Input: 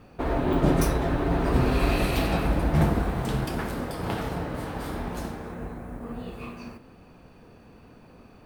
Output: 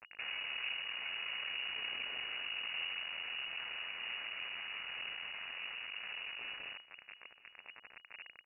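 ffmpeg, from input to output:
-filter_complex "[0:a]asettb=1/sr,asplit=3[a][b][c];[a]atrim=end=5.444[d];[b]atrim=start=5.44:end=5.93,asetpts=PTS-STARTPTS,afade=t=in:d=0.004:c=qsin,afade=t=out:st=0.486:d=0.004:c=qsin,bandreject=f=100.1:t=h:w=4,bandreject=f=200.2:t=h:w=4,bandreject=f=300.3:t=h:w=4,bandreject=f=400.4:t=h:w=4,bandreject=f=500.5:t=h:w=4,bandreject=f=600.6:t=h:w=4,bandreject=f=700.7:t=h:w=4,bandreject=f=800.8:t=h:w=4,bandreject=f=900.9:t=h:w=4,bandreject=f=1.001k:t=h:w=4,bandreject=f=1.1011k:t=h:w=4,bandreject=f=1.2012k:t=h:w=4,bandreject=f=1.3013k:t=h:w=4,bandreject=f=1.4014k:t=h:w=4,bandreject=f=1.5015k:t=h:w=4,bandreject=f=1.6016k:t=h:w=4,bandreject=f=1.7017k:t=h:w=4,bandreject=f=1.8018k:t=h:w=4,bandreject=f=1.9019k:t=h:w=4,bandreject=f=2.002k:t=h:w=4,bandreject=f=2.1021k:t=h:w=4,bandreject=f=2.2022k:t=h:w=4,bandreject=f=2.3023k:t=h:w=4,bandreject=f=2.4024k:t=h:w=4,bandreject=f=2.5025k:t=h:w=4,bandreject=f=2.6026k:t=h:w=4,bandreject=f=2.7027k:t=h:w=4,bandreject=f=2.8028k:t=h:w=4,bandreject=f=2.9029k:t=h:w=4,bandreject=f=3.003k:t=h:w=4,bandreject=f=3.1031k:t=h:w=4,bandreject=f=3.2032k:t=h:w=4[e];[c]atrim=start=5.926[f];[d][e]acrossfade=d=0.004:c1=hsin:c2=qsin[g];[g][f]acrossfade=d=0.004:c1=qsin:c2=hsin,flanger=delay=8.3:depth=1.9:regen=25:speed=1.4:shape=triangular,acompressor=threshold=-47dB:ratio=3,acrusher=bits=5:dc=4:mix=0:aa=0.000001,aemphasis=mode=reproduction:type=50fm,lowpass=f=2.5k:t=q:w=0.5098,lowpass=f=2.5k:t=q:w=0.6013,lowpass=f=2.5k:t=q:w=0.9,lowpass=f=2.5k:t=q:w=2.563,afreqshift=-2900,equalizer=f=320:w=4.8:g=-4.5,aecho=1:1:990:0.0944,volume=5dB"

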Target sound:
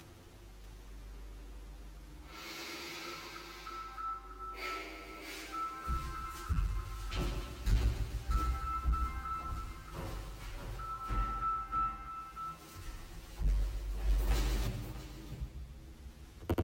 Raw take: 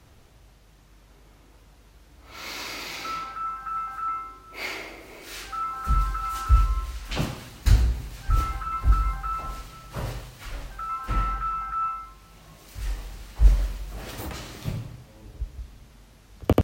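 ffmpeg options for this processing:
-filter_complex "[0:a]equalizer=f=340:w=4.9:g=7.5,asplit=2[a][b];[b]aecho=0:1:145|290|435|580|725|870|1015:0.376|0.218|0.126|0.0733|0.0425|0.0247|0.0143[c];[a][c]amix=inputs=2:normalize=0,acompressor=mode=upward:threshold=-33dB:ratio=2.5,bandreject=f=630:w=16,asplit=2[d][e];[e]aecho=0:1:640:0.473[f];[d][f]amix=inputs=2:normalize=0,asoftclip=type=tanh:threshold=-14dB,asettb=1/sr,asplit=3[g][h][i];[g]atrim=end=14.274[j];[h]atrim=start=14.27:end=14.67,asetpts=PTS-STARTPTS,afade=t=in:d=0.004:c=qsin,afade=t=out:st=0.396:d=0.004:c=qsin,acontrast=87[k];[i]atrim=start=14.666[l];[j][k]acrossfade=d=0.004:c1=hsin:c2=qsin[m];[m][l]acrossfade=d=0.004:c1=qsin:c2=hsin,asplit=2[n][o];[o]adelay=9,afreqshift=0.3[p];[n][p]amix=inputs=2:normalize=1,volume=-7.5dB"

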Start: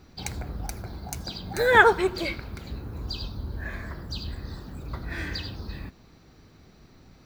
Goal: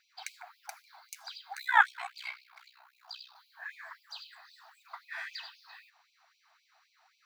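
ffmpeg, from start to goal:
-filter_complex "[0:a]asettb=1/sr,asplit=3[a][b][c];[a]atrim=end=1.544[d];[b]atrim=start=1.54:end=3.36,asetpts=PTS-STARTPTS,afade=t=in:d=0.004:c=qsin,afade=t=out:st=1.816:d=0.004:c=qsin,aeval=exprs='val(0)*sin(2*PI*31*n/s)':c=same[e];[c]atrim=start=3.356[f];[d][e]acrossfade=d=0.004:c1=hsin:c2=qsin[g];[g][f]acrossfade=d=0.004:c1=qsin:c2=hsin,highshelf=f=2.8k:g=-11,afftfilt=real='re*gte(b*sr/1024,620*pow(2300/620,0.5+0.5*sin(2*PI*3.8*pts/sr)))':imag='im*gte(b*sr/1024,620*pow(2300/620,0.5+0.5*sin(2*PI*3.8*pts/sr)))':win_size=1024:overlap=0.75"

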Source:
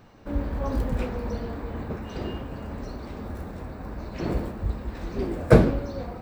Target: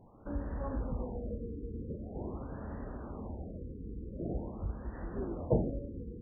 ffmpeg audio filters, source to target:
-af "acompressor=threshold=-35dB:ratio=1.5,afftfilt=real='re*lt(b*sr/1024,490*pow(2000/490,0.5+0.5*sin(2*PI*0.45*pts/sr)))':imag='im*lt(b*sr/1024,490*pow(2000/490,0.5+0.5*sin(2*PI*0.45*pts/sr)))':win_size=1024:overlap=0.75,volume=-5dB"

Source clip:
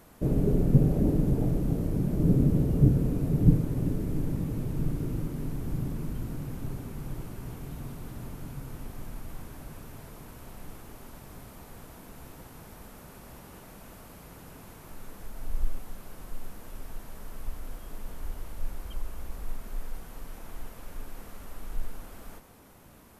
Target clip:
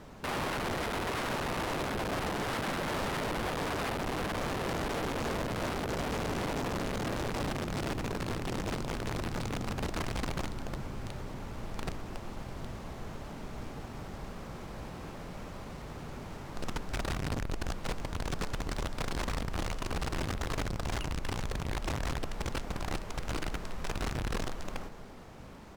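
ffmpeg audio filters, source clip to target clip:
-filter_complex "[0:a]acompressor=threshold=-30dB:ratio=2.5,asplit=2[a][b];[b]aecho=0:1:221|442|663|884:0.2|0.0838|0.0352|0.0148[c];[a][c]amix=inputs=2:normalize=0,aeval=exprs='(mod(47.3*val(0)+1,2)-1)/47.3':c=same,lowpass=7.1k,acrusher=samples=3:mix=1:aa=0.000001,highshelf=f=4.5k:g=6.5,asetrate=39690,aresample=44100,aemphasis=mode=reproduction:type=50kf,volume=5.5dB"

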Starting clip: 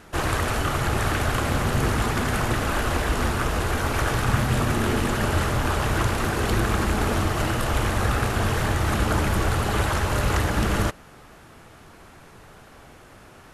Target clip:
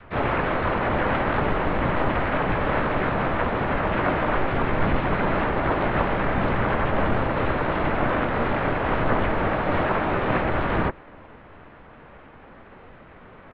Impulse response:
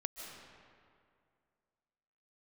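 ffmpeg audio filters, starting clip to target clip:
-filter_complex "[0:a]adynamicequalizer=threshold=0.00562:dfrequency=820:dqfactor=4.7:tfrequency=820:tqfactor=4.7:attack=5:release=100:ratio=0.375:range=2:mode=boostabove:tftype=bell,highpass=f=200:t=q:w=0.5412,highpass=f=200:t=q:w=1.307,lowpass=f=2.4k:t=q:w=0.5176,lowpass=f=2.4k:t=q:w=0.7071,lowpass=f=2.4k:t=q:w=1.932,afreqshift=-220,asplit=4[a][b][c][d];[b]asetrate=22050,aresample=44100,atempo=2,volume=-2dB[e];[c]asetrate=55563,aresample=44100,atempo=0.793701,volume=-4dB[f];[d]asetrate=66075,aresample=44100,atempo=0.66742,volume=-6dB[g];[a][e][f][g]amix=inputs=4:normalize=0"

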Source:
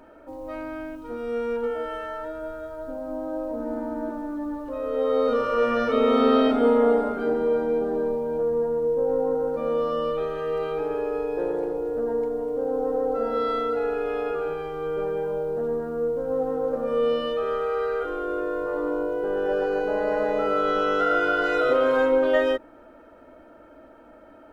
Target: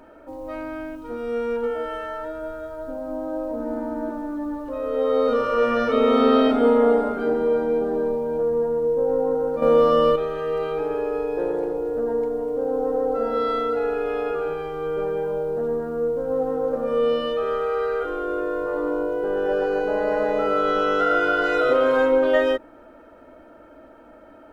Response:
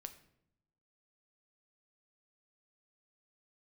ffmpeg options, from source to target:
-filter_complex "[0:a]asettb=1/sr,asplit=3[a][b][c];[a]atrim=end=9.624[d];[b]atrim=start=9.62:end=10.16,asetpts=PTS-STARTPTS,afade=t=in:d=0.004:c=qsin,afade=t=out:st=0.536:d=0.004:c=qsin,acontrast=75[e];[c]atrim=start=10.156[f];[d][e]acrossfade=d=0.004:c1=hsin:c2=qsin[g];[g][f]acrossfade=d=0.004:c1=qsin:c2=hsin,volume=2dB"

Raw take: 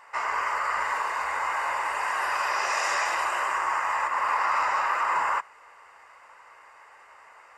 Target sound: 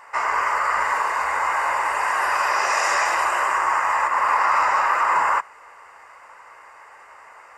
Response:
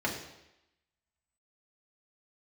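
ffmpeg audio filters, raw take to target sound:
-af "equalizer=f=3.5k:w=1.5:g=-5,volume=6.5dB"

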